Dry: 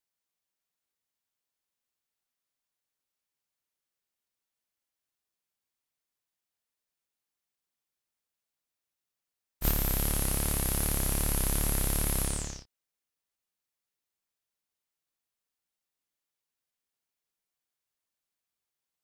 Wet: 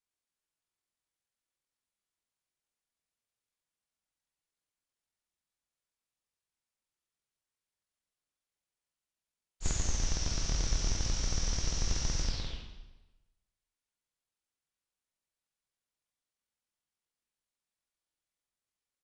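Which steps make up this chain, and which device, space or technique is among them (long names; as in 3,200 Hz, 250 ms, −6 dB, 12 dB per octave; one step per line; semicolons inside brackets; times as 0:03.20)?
monster voice (pitch shifter −11.5 semitones; low-shelf EQ 100 Hz +7.5 dB; convolution reverb RT60 1.1 s, pre-delay 18 ms, DRR 3 dB)
level −6.5 dB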